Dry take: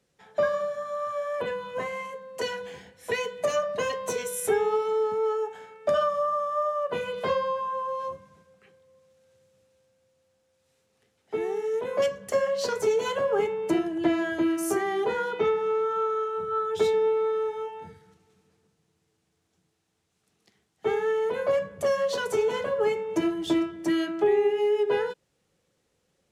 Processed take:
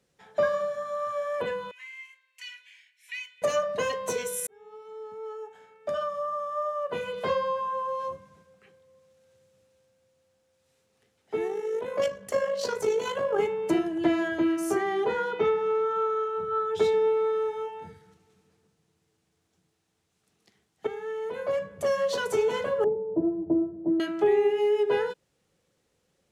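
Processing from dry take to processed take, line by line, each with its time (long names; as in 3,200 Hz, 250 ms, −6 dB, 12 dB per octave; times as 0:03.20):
0:01.71–0:03.42: four-pole ladder high-pass 2,100 Hz, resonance 65%
0:04.47–0:07.61: fade in
0:11.48–0:13.39: amplitude modulation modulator 52 Hz, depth 30%
0:14.28–0:16.92: high-shelf EQ 7,400 Hz −8.5 dB
0:20.87–0:22.10: fade in, from −12 dB
0:22.84–0:24.00: inverse Chebyshev low-pass filter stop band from 3,100 Hz, stop band 70 dB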